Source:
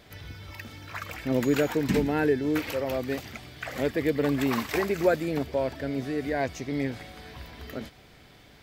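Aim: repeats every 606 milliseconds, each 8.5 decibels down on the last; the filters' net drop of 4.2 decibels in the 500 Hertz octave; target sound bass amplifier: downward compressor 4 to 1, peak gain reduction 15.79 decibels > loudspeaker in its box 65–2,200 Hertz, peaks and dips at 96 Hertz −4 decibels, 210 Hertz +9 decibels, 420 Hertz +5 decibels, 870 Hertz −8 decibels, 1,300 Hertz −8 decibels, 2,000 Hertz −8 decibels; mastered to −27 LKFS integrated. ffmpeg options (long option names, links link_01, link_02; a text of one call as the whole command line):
ffmpeg -i in.wav -af "equalizer=frequency=500:width_type=o:gain=-8.5,aecho=1:1:606|1212|1818|2424:0.376|0.143|0.0543|0.0206,acompressor=threshold=-41dB:ratio=4,highpass=frequency=65:width=0.5412,highpass=frequency=65:width=1.3066,equalizer=frequency=96:width_type=q:width=4:gain=-4,equalizer=frequency=210:width_type=q:width=4:gain=9,equalizer=frequency=420:width_type=q:width=4:gain=5,equalizer=frequency=870:width_type=q:width=4:gain=-8,equalizer=frequency=1300:width_type=q:width=4:gain=-8,equalizer=frequency=2000:width_type=q:width=4:gain=-8,lowpass=frequency=2200:width=0.5412,lowpass=frequency=2200:width=1.3066,volume=15.5dB" out.wav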